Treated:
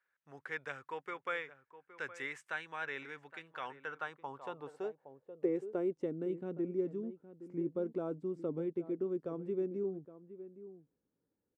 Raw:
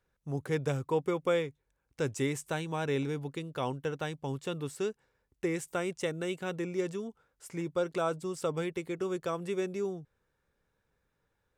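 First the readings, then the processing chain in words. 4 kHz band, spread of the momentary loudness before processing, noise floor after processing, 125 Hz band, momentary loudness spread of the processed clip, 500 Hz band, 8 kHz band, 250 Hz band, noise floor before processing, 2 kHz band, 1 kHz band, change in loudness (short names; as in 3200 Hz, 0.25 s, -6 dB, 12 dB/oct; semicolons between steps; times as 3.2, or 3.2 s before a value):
-11.5 dB, 7 LU, under -85 dBFS, -12.5 dB, 15 LU, -5.5 dB, under -20 dB, -4.0 dB, -80 dBFS, -1.5 dB, -6.5 dB, -5.5 dB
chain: outdoor echo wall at 140 m, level -14 dB; band-pass sweep 1700 Hz -> 280 Hz, 3.66–6.14; gain +3 dB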